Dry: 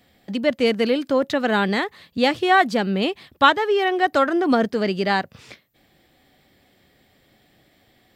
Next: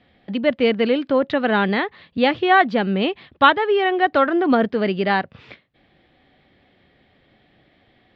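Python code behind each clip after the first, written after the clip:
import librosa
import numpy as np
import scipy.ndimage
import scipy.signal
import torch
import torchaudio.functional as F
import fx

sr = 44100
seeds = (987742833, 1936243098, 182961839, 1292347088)

y = scipy.signal.sosfilt(scipy.signal.butter(4, 3600.0, 'lowpass', fs=sr, output='sos'), x)
y = y * librosa.db_to_amplitude(1.5)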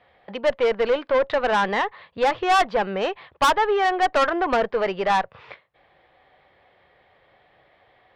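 y = fx.graphic_eq(x, sr, hz=(250, 500, 1000, 2000), db=(-11, 8, 12, 4))
y = fx.tube_stage(y, sr, drive_db=9.0, bias=0.3)
y = y * librosa.db_to_amplitude(-5.0)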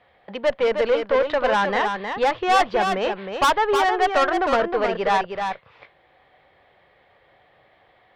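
y = x + 10.0 ** (-6.0 / 20.0) * np.pad(x, (int(313 * sr / 1000.0), 0))[:len(x)]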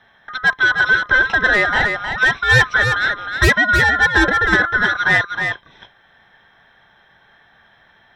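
y = fx.band_swap(x, sr, width_hz=1000)
y = y * librosa.db_to_amplitude(5.0)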